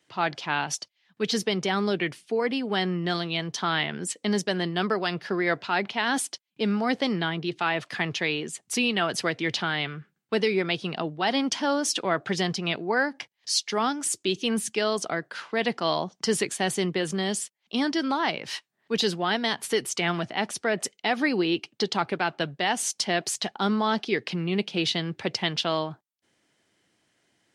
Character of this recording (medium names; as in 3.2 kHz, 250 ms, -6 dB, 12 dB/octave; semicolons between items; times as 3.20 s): noise floor -75 dBFS; spectral tilt -3.5 dB/octave